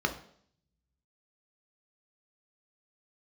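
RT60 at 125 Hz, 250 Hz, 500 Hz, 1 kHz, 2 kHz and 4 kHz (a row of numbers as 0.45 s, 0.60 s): 1.4 s, 0.80 s, 0.65 s, 0.60 s, 0.55 s, 0.65 s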